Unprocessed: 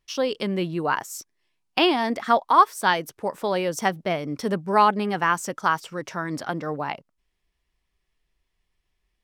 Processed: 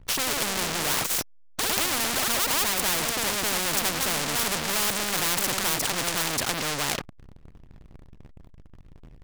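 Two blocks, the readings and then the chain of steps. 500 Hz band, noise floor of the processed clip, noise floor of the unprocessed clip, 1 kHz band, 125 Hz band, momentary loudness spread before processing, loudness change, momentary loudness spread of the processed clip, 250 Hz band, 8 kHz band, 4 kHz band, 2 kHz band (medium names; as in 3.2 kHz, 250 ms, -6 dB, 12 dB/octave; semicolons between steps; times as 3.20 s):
-7.5 dB, -50 dBFS, -76 dBFS, -9.0 dB, -3.5 dB, 12 LU, -0.5 dB, 4 LU, -7.0 dB, +14.0 dB, +6.0 dB, 0.0 dB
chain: tilt EQ -3.5 dB/octave; waveshaping leveller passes 5; ever faster or slower copies 112 ms, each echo +2 st, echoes 3, each echo -6 dB; power-law waveshaper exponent 0.5; hysteresis with a dead band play -31.5 dBFS; spectrum-flattening compressor 4:1; trim -7 dB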